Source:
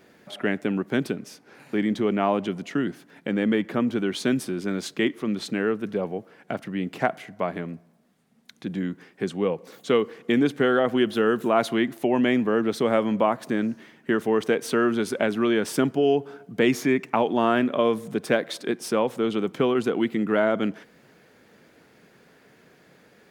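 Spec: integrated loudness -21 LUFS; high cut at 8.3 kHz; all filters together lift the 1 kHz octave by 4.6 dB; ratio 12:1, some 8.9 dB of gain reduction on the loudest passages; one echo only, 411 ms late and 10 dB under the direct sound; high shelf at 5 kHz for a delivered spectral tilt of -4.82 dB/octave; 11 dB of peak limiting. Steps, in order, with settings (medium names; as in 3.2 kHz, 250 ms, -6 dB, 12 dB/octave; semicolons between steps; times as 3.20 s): low-pass 8.3 kHz; peaking EQ 1 kHz +6.5 dB; treble shelf 5 kHz -5 dB; compression 12:1, threshold -22 dBFS; peak limiter -20 dBFS; delay 411 ms -10 dB; trim +10.5 dB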